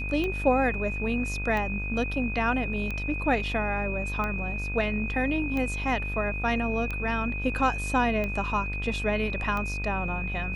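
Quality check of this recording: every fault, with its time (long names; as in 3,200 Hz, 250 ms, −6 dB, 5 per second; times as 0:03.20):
mains buzz 50 Hz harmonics 34 −33 dBFS
scratch tick 45 rpm −19 dBFS
whistle 2,500 Hz −33 dBFS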